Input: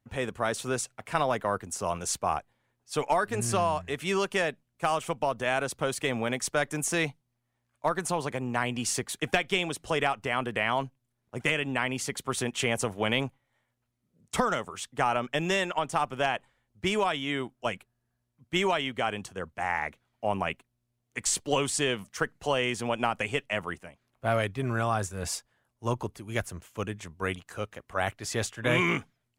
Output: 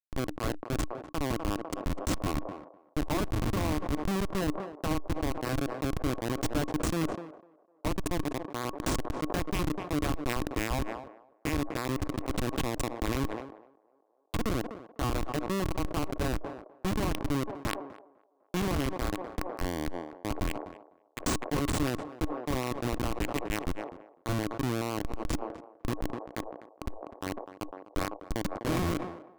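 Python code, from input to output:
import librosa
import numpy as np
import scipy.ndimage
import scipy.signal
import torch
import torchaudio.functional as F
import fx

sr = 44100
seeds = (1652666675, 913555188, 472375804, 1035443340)

p1 = fx.wiener(x, sr, points=25)
p2 = fx.highpass(p1, sr, hz=79.0, slope=6)
p3 = fx.low_shelf(p2, sr, hz=100.0, db=8.0)
p4 = fx.over_compress(p3, sr, threshold_db=-36.0, ratio=-1.0)
p5 = p3 + (p4 * 10.0 ** (-2.0 / 20.0))
p6 = fx.schmitt(p5, sr, flips_db=-22.0)
p7 = fx.small_body(p6, sr, hz=(300.0, 1100.0), ring_ms=60, db=9)
p8 = p7 + fx.echo_banded(p7, sr, ms=251, feedback_pct=69, hz=640.0, wet_db=-23.5, dry=0)
y = fx.sustainer(p8, sr, db_per_s=72.0)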